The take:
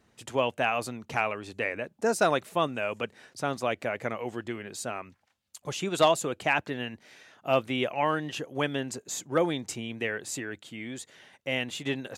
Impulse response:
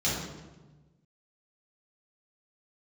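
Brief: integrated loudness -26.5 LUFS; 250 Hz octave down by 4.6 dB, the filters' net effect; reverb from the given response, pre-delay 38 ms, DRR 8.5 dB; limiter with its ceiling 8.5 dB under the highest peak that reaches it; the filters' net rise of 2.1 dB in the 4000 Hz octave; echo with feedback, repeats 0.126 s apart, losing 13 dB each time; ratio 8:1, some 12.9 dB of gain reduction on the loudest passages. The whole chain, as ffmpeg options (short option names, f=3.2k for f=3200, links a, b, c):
-filter_complex "[0:a]equalizer=f=250:t=o:g=-6,equalizer=f=4k:t=o:g=3,acompressor=threshold=-30dB:ratio=8,alimiter=limit=-24dB:level=0:latency=1,aecho=1:1:126|252|378:0.224|0.0493|0.0108,asplit=2[a][b];[1:a]atrim=start_sample=2205,adelay=38[c];[b][c]afir=irnorm=-1:irlink=0,volume=-18.5dB[d];[a][d]amix=inputs=2:normalize=0,volume=10dB"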